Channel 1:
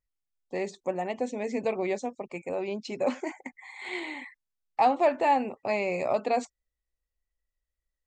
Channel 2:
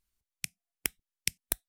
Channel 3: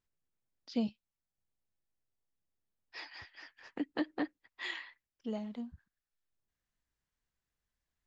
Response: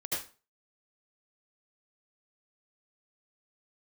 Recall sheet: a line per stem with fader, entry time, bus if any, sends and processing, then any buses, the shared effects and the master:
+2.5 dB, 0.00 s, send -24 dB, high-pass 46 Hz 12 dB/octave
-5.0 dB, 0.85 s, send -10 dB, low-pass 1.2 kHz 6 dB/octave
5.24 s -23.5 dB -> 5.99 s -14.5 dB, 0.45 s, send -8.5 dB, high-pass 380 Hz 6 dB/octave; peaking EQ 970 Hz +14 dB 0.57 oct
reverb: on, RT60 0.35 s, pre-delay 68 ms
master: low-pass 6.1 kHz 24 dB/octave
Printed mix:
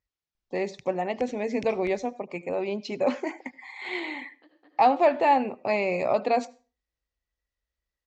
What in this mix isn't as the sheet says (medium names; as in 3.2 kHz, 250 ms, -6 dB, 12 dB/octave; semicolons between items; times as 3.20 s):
stem 2: entry 0.85 s -> 0.35 s; stem 3: missing peaking EQ 970 Hz +14 dB 0.57 oct